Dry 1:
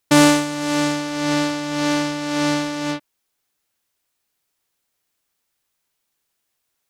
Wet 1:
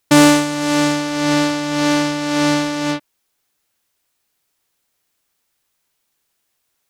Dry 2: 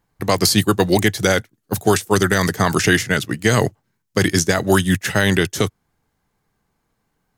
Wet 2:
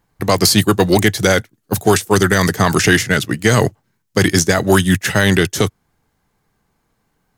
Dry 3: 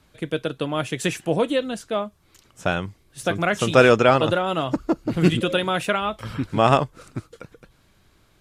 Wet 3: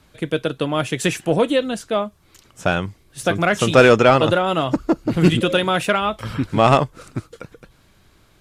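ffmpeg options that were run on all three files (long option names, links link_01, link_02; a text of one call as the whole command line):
ffmpeg -i in.wav -af "acontrast=32,volume=-1dB" out.wav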